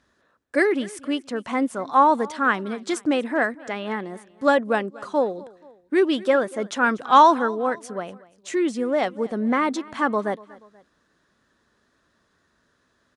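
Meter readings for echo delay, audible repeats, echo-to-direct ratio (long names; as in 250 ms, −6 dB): 240 ms, 2, −20.5 dB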